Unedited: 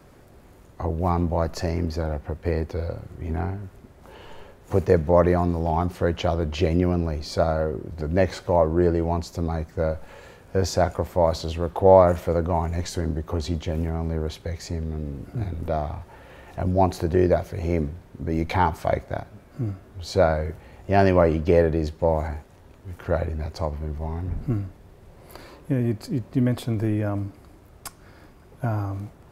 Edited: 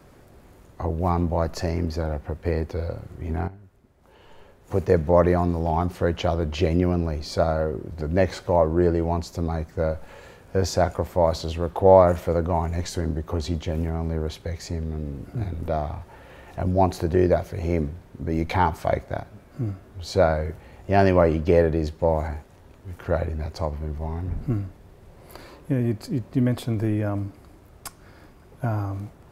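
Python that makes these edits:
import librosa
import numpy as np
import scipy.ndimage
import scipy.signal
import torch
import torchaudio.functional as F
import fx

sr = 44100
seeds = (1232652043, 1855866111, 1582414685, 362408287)

y = fx.edit(x, sr, fx.fade_in_from(start_s=3.48, length_s=1.54, curve='qua', floor_db=-13.0), tone=tone)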